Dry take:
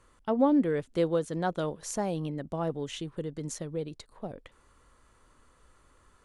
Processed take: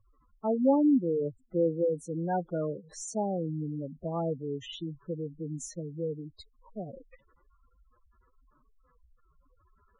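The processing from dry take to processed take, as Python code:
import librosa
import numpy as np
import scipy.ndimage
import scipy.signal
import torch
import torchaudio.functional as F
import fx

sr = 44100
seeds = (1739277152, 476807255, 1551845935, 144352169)

y = fx.stretch_vocoder(x, sr, factor=1.6)
y = fx.spec_gate(y, sr, threshold_db=-10, keep='strong')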